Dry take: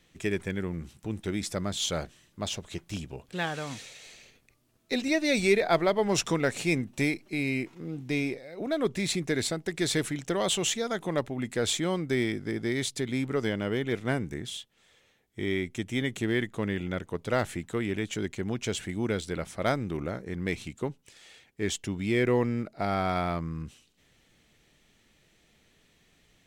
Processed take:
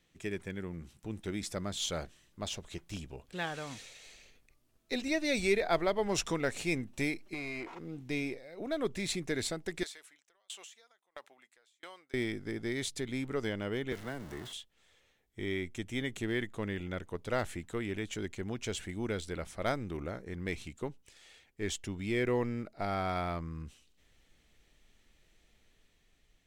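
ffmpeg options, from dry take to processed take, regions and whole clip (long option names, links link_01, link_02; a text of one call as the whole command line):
ffmpeg -i in.wav -filter_complex "[0:a]asettb=1/sr,asplit=3[link_01][link_02][link_03];[link_01]atrim=end=7.344[link_04];[link_02]atrim=start=7.34:end=7.79,asetpts=PTS-STARTPTS,afade=type=in:duration=0.004:curve=qsin,afade=type=out:start_time=0.446:duration=0.004:curve=qsin,equalizer=frequency=800:width=0.72:gain=11.5,acompressor=threshold=-35dB:ratio=3:attack=3.2:release=140:knee=1:detection=peak,asplit=2[link_05][link_06];[link_06]highpass=frequency=720:poles=1,volume=18dB,asoftclip=type=tanh:threshold=-25.5dB[link_07];[link_05][link_07]amix=inputs=2:normalize=0,lowpass=frequency=3000:poles=1,volume=-6dB[link_08];[link_03]atrim=start=7.786[link_09];[link_04][link_08]acrossfade=duration=0.004:curve1=hsin:curve2=qsin[link_10];[link_10][link_09]acrossfade=duration=0.004:curve1=qsin:curve2=hsin,asettb=1/sr,asplit=3[link_11][link_12][link_13];[link_11]atrim=end=9.834[link_14];[link_12]atrim=start=9.83:end=12.14,asetpts=PTS-STARTPTS,afade=type=in:duration=0.004:curve=qsin,afade=type=out:start_time=2.306:duration=0.004:curve=qsin,highpass=850,acompressor=threshold=-34dB:ratio=6:attack=3.2:release=140:knee=1:detection=peak,aeval=exprs='val(0)*pow(10,-35*if(lt(mod(1.5*n/s,1),2*abs(1.5)/1000),1-mod(1.5*n/s,1)/(2*abs(1.5)/1000),(mod(1.5*n/s,1)-2*abs(1.5)/1000)/(1-2*abs(1.5)/1000))/20)':channel_layout=same[link_15];[link_13]atrim=start=12.136[link_16];[link_14][link_15]acrossfade=duration=0.004:curve1=hsin:curve2=qsin[link_17];[link_17][link_16]acrossfade=duration=0.004:curve1=qsin:curve2=hsin,asettb=1/sr,asplit=3[link_18][link_19][link_20];[link_18]atrim=end=13.924[link_21];[link_19]atrim=start=13.92:end=14.53,asetpts=PTS-STARTPTS,afade=type=in:duration=0.004:curve=qsin,afade=type=out:start_time=0.606:duration=0.004:curve=qsin,aeval=exprs='val(0)+0.5*0.0237*sgn(val(0))':channel_layout=same,bandreject=frequency=2400:width=7.8,acrossover=split=110|290|950|2600[link_22][link_23][link_24][link_25][link_26];[link_22]acompressor=threshold=-54dB:ratio=3[link_27];[link_23]acompressor=threshold=-41dB:ratio=3[link_28];[link_24]acompressor=threshold=-38dB:ratio=3[link_29];[link_25]acompressor=threshold=-42dB:ratio=3[link_30];[link_26]acompressor=threshold=-52dB:ratio=3[link_31];[link_27][link_28][link_29][link_30][link_31]amix=inputs=5:normalize=0[link_32];[link_20]atrim=start=14.526[link_33];[link_21][link_32]acrossfade=duration=0.004:curve1=hsin:curve2=qsin[link_34];[link_34][link_33]acrossfade=duration=0.004:curve1=qsin:curve2=hsin,asubboost=boost=4:cutoff=60,dynaudnorm=framelen=160:gausssize=11:maxgain=3dB,volume=-8dB" out.wav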